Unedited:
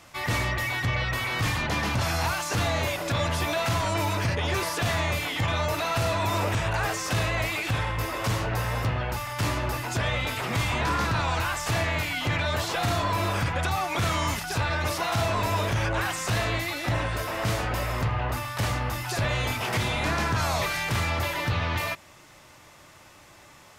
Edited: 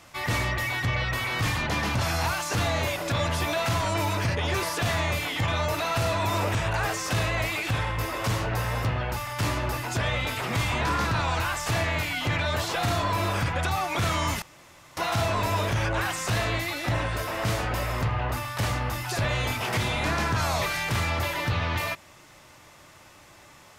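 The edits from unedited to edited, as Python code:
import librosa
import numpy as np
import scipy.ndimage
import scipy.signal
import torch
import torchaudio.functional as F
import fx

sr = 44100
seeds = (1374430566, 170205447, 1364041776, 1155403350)

y = fx.edit(x, sr, fx.room_tone_fill(start_s=14.42, length_s=0.55), tone=tone)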